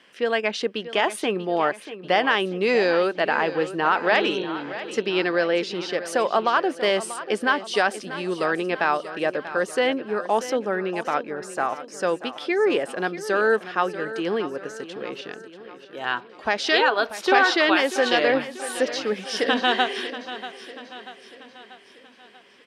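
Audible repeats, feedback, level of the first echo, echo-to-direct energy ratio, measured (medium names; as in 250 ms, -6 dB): 4, 52%, -13.5 dB, -12.0 dB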